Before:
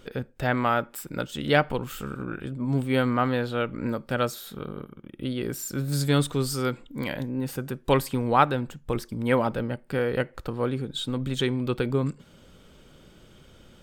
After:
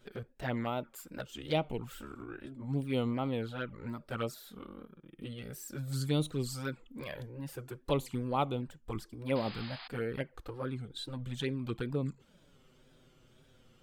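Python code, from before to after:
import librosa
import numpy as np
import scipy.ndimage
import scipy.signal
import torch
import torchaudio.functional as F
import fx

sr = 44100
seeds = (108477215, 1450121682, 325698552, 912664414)

y = fx.wow_flutter(x, sr, seeds[0], rate_hz=2.1, depth_cents=110.0)
y = fx.env_flanger(y, sr, rest_ms=8.9, full_db=-19.5)
y = fx.spec_paint(y, sr, seeds[1], shape='noise', start_s=9.35, length_s=0.53, low_hz=660.0, high_hz=5100.0, level_db=-40.0)
y = y * 10.0 ** (-7.5 / 20.0)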